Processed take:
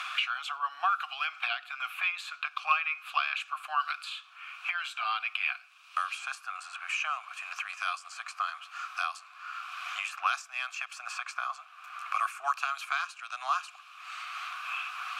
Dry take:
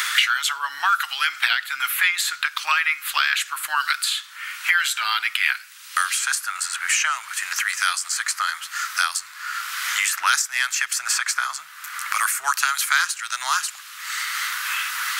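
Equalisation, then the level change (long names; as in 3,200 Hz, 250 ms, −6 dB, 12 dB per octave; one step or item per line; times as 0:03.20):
formant filter a
+4.0 dB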